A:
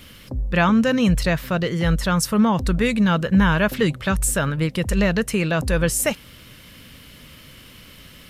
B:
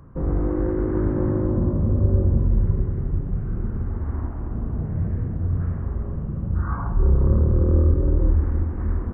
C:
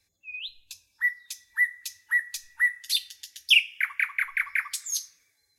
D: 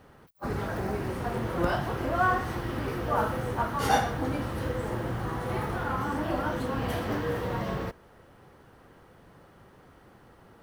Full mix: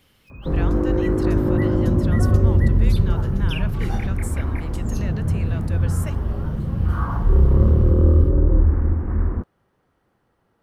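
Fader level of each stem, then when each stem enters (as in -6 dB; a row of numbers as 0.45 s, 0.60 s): -16.0 dB, +3.0 dB, -15.0 dB, -12.5 dB; 0.00 s, 0.30 s, 0.00 s, 0.00 s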